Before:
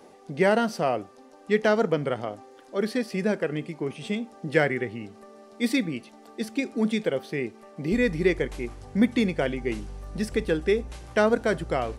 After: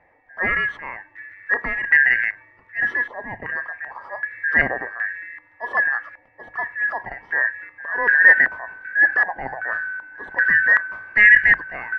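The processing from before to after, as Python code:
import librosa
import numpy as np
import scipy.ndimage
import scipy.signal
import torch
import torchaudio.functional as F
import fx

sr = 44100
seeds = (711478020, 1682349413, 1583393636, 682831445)

y = fx.band_shuffle(x, sr, order='2143')
y = fx.transient(y, sr, attack_db=-5, sustain_db=4)
y = fx.hum_notches(y, sr, base_hz=50, count=3)
y = fx.filter_held_lowpass(y, sr, hz=2.6, low_hz=820.0, high_hz=1800.0)
y = F.gain(torch.from_numpy(y), 1.5).numpy()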